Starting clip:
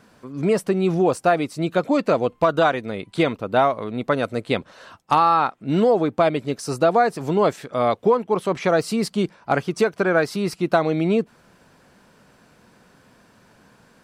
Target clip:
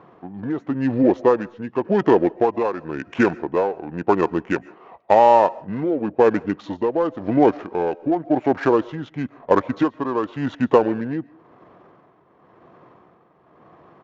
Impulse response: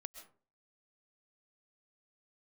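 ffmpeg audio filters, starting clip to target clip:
-filter_complex "[0:a]highpass=83,bass=f=250:g=-15,treble=f=4k:g=-10,asplit=2[a][b];[b]acompressor=threshold=-33dB:ratio=6,volume=-1dB[c];[a][c]amix=inputs=2:normalize=0,tremolo=f=0.94:d=0.63,asetrate=31183,aresample=44100,atempo=1.41421,adynamicsmooth=sensitivity=5:basefreq=2k,asplit=2[d][e];[1:a]atrim=start_sample=2205[f];[e][f]afir=irnorm=-1:irlink=0,volume=-6.5dB[g];[d][g]amix=inputs=2:normalize=0,aresample=16000,aresample=44100,volume=2dB"

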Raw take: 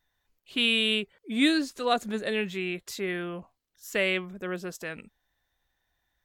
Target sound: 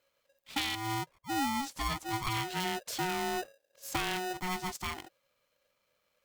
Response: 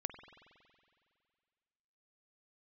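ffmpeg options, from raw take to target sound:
-filter_complex "[0:a]asettb=1/sr,asplit=3[a][b][c];[a]atrim=end=0.754[d];[b]atrim=start=0.75:end=1.6,asetpts=PTS-STARTPTS,afade=t=in:d=0.004:c=qsin,afade=t=out:st=0.846:d=0.004:c=qsin,lowpass=f=1.4k:w=0.5412,lowpass=f=1.4k:w=1.3066[e];[c]atrim=start=1.596[f];[d][e]acrossfade=d=0.004:c1=hsin:c2=qsin[g];[g][f]acrossfade=d=0.004:c1=qsin:c2=hsin,asplit=3[h][i][j];[h]afade=t=out:st=2.64:d=0.02[k];[i]asubboost=boost=7:cutoff=190,afade=t=in:st=2.64:d=0.02,afade=t=out:st=4.32:d=0.02[l];[j]afade=t=in:st=4.32:d=0.02[m];[k][l][m]amix=inputs=3:normalize=0,acompressor=threshold=-29dB:ratio=12,asuperstop=centerf=910:order=4:qfactor=2.1,aeval=exprs='val(0)*sgn(sin(2*PI*550*n/s))':c=same"

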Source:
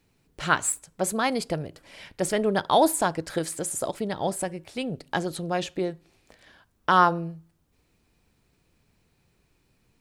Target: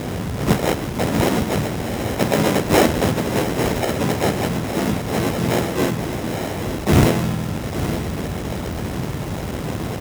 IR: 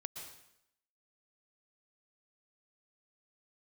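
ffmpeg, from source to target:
-filter_complex "[0:a]aeval=exprs='val(0)+0.5*0.075*sgn(val(0))':c=same,tremolo=f=81:d=0.824,acrusher=samples=37:mix=1:aa=0.000001,asplit=4[a][b][c][d];[b]asetrate=33038,aresample=44100,atempo=1.33484,volume=-2dB[e];[c]asetrate=55563,aresample=44100,atempo=0.793701,volume=-3dB[f];[d]asetrate=58866,aresample=44100,atempo=0.749154,volume=-7dB[g];[a][e][f][g]amix=inputs=4:normalize=0,lowshelf=f=210:g=5.5,bandreject=f=4.3k:w=14,aecho=1:1:861:0.299,acrusher=bits=4:mode=log:mix=0:aa=0.000001,highpass=67,volume=1.5dB"

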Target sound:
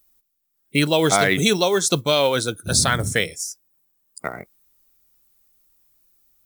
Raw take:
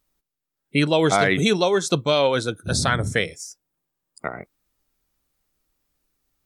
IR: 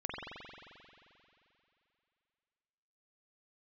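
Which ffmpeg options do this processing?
-af "acrusher=bits=9:mode=log:mix=0:aa=0.000001,aemphasis=mode=production:type=50kf"

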